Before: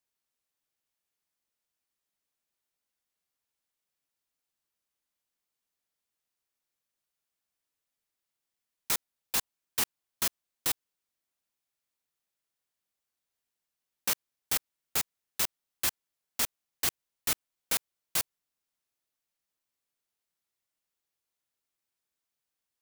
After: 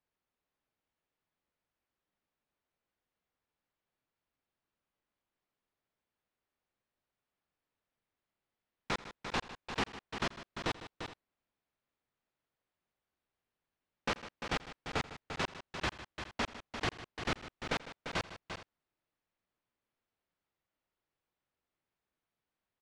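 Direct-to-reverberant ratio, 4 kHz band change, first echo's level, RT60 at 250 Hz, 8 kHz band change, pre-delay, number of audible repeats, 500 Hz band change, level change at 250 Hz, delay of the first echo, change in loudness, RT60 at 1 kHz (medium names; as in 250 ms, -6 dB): no reverb, -5.0 dB, -19.5 dB, no reverb, -18.5 dB, no reverb, 4, +6.0 dB, +7.0 dB, 85 ms, -7.5 dB, no reverb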